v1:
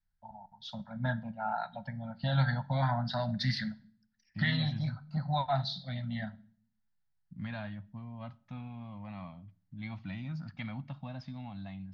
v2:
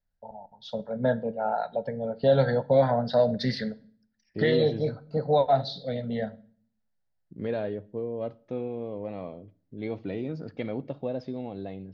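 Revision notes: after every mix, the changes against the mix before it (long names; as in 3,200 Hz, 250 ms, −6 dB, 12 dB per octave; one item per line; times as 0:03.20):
master: remove Chebyshev band-stop filter 180–980 Hz, order 2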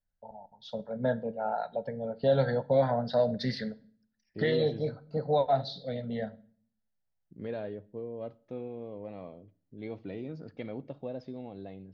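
first voice −4.0 dB
second voice −6.5 dB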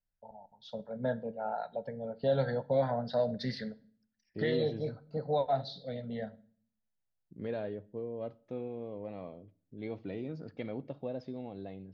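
first voice −4.0 dB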